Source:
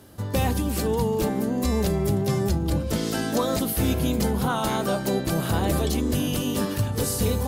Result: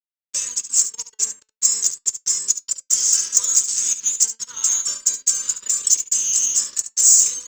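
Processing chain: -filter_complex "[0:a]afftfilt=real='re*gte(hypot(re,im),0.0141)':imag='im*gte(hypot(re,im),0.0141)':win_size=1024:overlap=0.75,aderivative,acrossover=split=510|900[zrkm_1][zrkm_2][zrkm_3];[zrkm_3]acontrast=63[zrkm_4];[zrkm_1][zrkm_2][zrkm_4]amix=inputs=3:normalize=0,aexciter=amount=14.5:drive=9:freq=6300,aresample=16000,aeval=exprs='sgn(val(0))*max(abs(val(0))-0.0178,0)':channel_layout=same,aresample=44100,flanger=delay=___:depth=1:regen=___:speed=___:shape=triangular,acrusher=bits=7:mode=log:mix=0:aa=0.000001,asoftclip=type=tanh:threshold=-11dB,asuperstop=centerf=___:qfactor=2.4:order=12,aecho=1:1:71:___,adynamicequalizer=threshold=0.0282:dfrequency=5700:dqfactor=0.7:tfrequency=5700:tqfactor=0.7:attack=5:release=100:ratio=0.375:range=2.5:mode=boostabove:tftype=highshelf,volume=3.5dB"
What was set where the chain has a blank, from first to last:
3.7, 88, 0.38, 720, 0.251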